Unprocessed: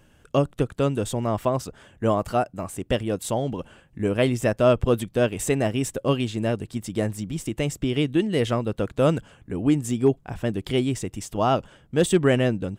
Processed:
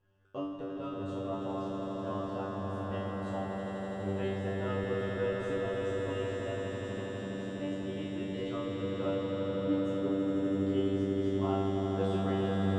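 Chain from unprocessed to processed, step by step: LPF 3100 Hz 12 dB/oct; bell 2300 Hz -9 dB 0.27 oct; resonator 97 Hz, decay 0.83 s, harmonics all, mix 100%; on a send: swelling echo 82 ms, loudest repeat 8, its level -6 dB

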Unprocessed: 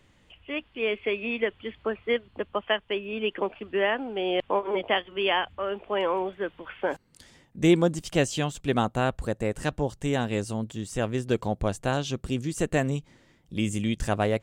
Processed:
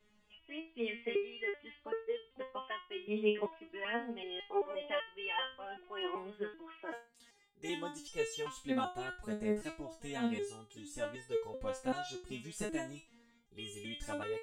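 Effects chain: 6.66–8.09 low shelf 140 Hz -9.5 dB; stepped resonator 2.6 Hz 210–450 Hz; gain +3.5 dB

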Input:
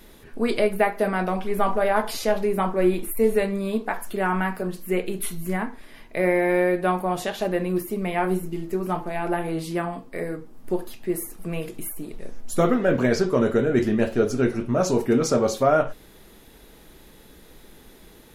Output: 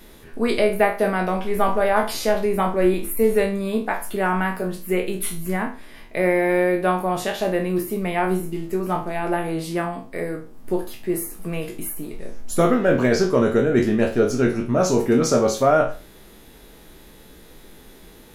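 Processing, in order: spectral trails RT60 0.35 s; gain +1.5 dB

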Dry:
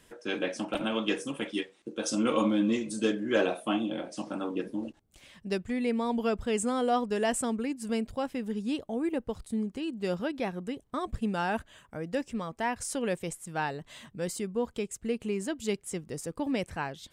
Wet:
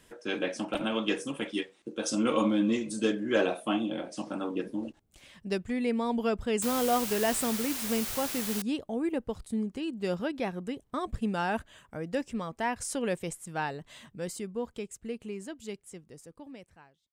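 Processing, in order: ending faded out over 3.93 s; 6.62–8.62 requantised 6-bit, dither triangular

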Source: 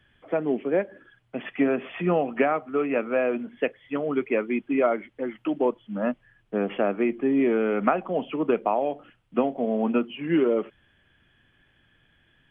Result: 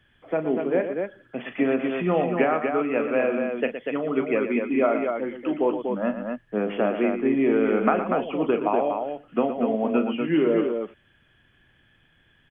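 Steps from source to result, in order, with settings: loudspeakers at several distances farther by 13 m -11 dB, 40 m -10 dB, 83 m -5 dB

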